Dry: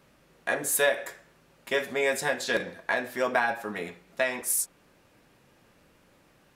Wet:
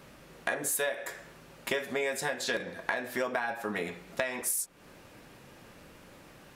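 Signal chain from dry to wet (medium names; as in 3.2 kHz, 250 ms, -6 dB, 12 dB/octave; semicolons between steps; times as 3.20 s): compression 5:1, threshold -38 dBFS, peak gain reduction 17 dB; trim +8 dB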